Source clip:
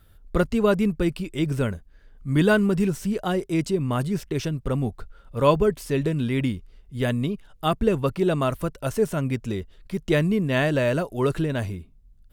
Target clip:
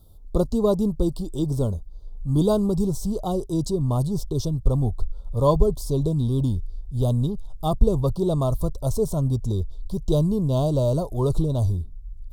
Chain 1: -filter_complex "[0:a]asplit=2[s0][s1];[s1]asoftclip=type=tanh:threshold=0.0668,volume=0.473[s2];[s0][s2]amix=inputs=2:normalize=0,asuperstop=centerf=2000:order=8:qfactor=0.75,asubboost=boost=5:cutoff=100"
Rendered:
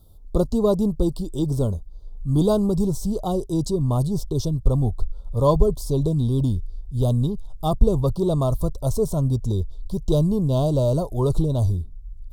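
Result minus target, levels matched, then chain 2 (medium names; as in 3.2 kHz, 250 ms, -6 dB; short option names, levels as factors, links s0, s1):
saturation: distortion -5 dB
-filter_complex "[0:a]asplit=2[s0][s1];[s1]asoftclip=type=tanh:threshold=0.0178,volume=0.473[s2];[s0][s2]amix=inputs=2:normalize=0,asuperstop=centerf=2000:order=8:qfactor=0.75,asubboost=boost=5:cutoff=100"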